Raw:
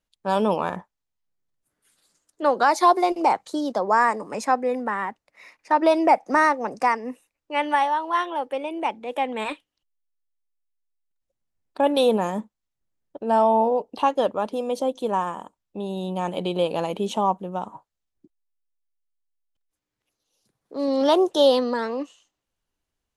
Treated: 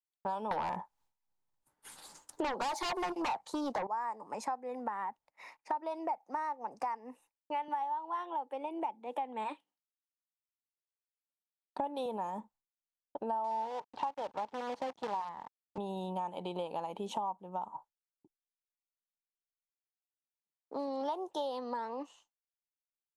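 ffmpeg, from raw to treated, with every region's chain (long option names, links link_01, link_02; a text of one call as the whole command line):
ffmpeg -i in.wav -filter_complex "[0:a]asettb=1/sr,asplit=3[link_01][link_02][link_03];[link_01]atrim=end=0.514[link_04];[link_02]atrim=start=0.51:end=3.87,asetpts=PTS-STARTPTS,afade=type=in:duration=0.004:curve=qsin,afade=type=out:start_time=3.356:duration=0.004:curve=qsin,bandreject=frequency=680:width=20,aeval=exprs='0.473*sin(PI/2*5.01*val(0)/0.473)':channel_layout=same[link_05];[link_03]atrim=start=3.866[link_06];[link_04][link_05]acrossfade=duration=0.004:curve1=hsin:curve2=qsin[link_07];[link_07][link_06]acrossfade=duration=0.004:curve1=qsin:curve2=hsin,asettb=1/sr,asplit=3[link_08][link_09][link_10];[link_08]atrim=end=7.684[link_11];[link_09]atrim=start=7.68:end=12.06,asetpts=PTS-STARTPTS,afade=type=in:duration=0.004:curve=qsin,afade=type=out:start_time=4.376:duration=0.004:curve=qsin,highpass=frequency=190:width=0.5412,highpass=frequency=190:width=1.3066,lowshelf=frequency=280:gain=10[link_12];[link_10]atrim=start=12.056[link_13];[link_11][link_12]acrossfade=duration=0.004:curve1=hsin:curve2=qsin[link_14];[link_14][link_13]acrossfade=duration=0.004:curve1=qsin:curve2=hsin,asettb=1/sr,asplit=3[link_15][link_16][link_17];[link_15]atrim=end=13.444[link_18];[link_16]atrim=start=13.44:end=15.78,asetpts=PTS-STARTPTS,afade=type=in:duration=0.004:curve=qsin,afade=type=out:start_time=2.336:duration=0.004:curve=qsin,acrusher=bits=5:dc=4:mix=0:aa=0.000001,highpass=140,lowpass=4800[link_19];[link_17]atrim=start=15.776[link_20];[link_18][link_19]acrossfade=duration=0.004:curve1=hsin:curve2=qsin[link_21];[link_21][link_20]acrossfade=duration=0.004:curve1=qsin:curve2=hsin,agate=range=-33dB:threshold=-47dB:ratio=3:detection=peak,equalizer=frequency=880:width_type=o:width=0.57:gain=14,acompressor=threshold=-30dB:ratio=6,volume=-5.5dB" out.wav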